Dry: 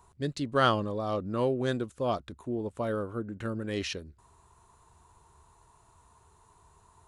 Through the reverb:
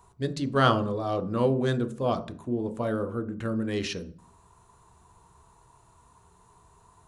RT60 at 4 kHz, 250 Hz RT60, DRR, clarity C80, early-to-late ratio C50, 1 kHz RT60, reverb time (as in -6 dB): 0.40 s, 0.70 s, 8.0 dB, 20.0 dB, 16.0 dB, 0.45 s, 0.45 s